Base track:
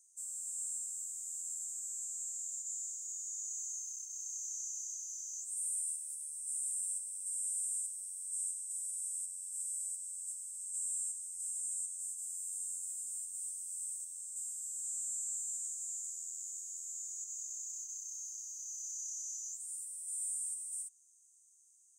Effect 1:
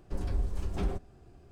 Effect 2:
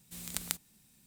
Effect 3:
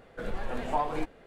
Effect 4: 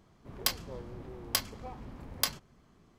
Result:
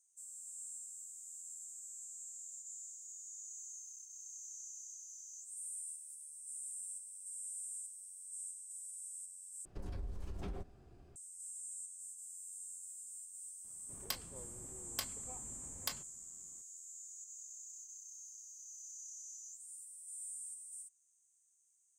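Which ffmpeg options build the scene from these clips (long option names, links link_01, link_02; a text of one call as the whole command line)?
ffmpeg -i bed.wav -i cue0.wav -i cue1.wav -i cue2.wav -i cue3.wav -filter_complex "[0:a]volume=-8dB[link_01];[1:a]acompressor=threshold=-33dB:ratio=6:attack=3.2:release=140:knee=1:detection=peak[link_02];[link_01]asplit=2[link_03][link_04];[link_03]atrim=end=9.654[link_05];[link_02]atrim=end=1.51,asetpts=PTS-STARTPTS,volume=-5dB[link_06];[link_04]atrim=start=11.156[link_07];[4:a]atrim=end=2.98,asetpts=PTS-STARTPTS,volume=-10.5dB,afade=type=in:duration=0.004:curve=hsin,afade=type=out:start_time=2.976:duration=0.004:curve=hsin,adelay=601524S[link_08];[link_05][link_06]acrossfade=duration=0.004:curve1=hsin:curve2=hsin[link_09];[link_09][link_07]acrossfade=duration=0.004:curve1=hsin:curve2=hsin[link_10];[link_10][link_08]amix=inputs=2:normalize=0" out.wav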